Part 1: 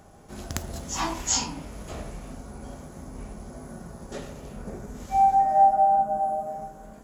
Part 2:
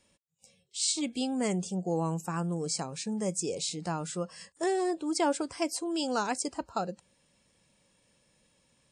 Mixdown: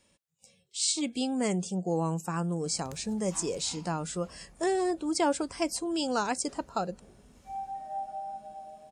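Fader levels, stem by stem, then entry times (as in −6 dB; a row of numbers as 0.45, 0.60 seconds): −18.5, +1.0 decibels; 2.35, 0.00 seconds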